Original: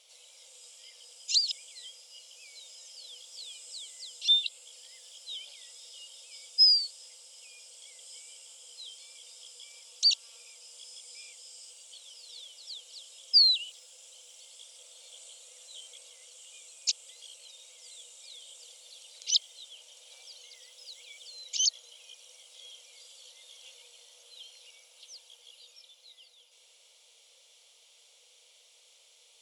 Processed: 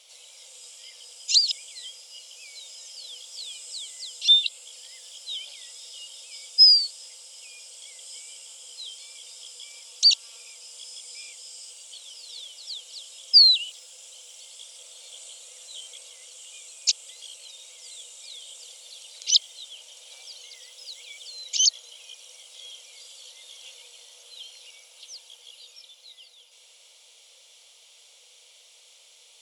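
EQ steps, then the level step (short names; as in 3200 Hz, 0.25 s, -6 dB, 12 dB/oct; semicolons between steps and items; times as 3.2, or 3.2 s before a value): HPF 470 Hz; +6.5 dB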